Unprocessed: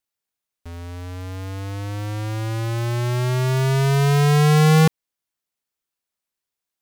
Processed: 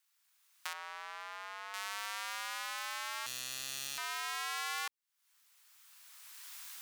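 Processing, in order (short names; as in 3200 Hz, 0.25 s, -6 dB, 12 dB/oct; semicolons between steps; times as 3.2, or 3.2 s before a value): recorder AGC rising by 18 dB/s; HPF 1000 Hz 24 dB/oct; compressor 3:1, threshold -48 dBFS, peak gain reduction 20.5 dB; 0.73–1.74 LPF 1300 Hz 6 dB/oct; 3.26–3.98 Doppler distortion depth 0.98 ms; gain +7 dB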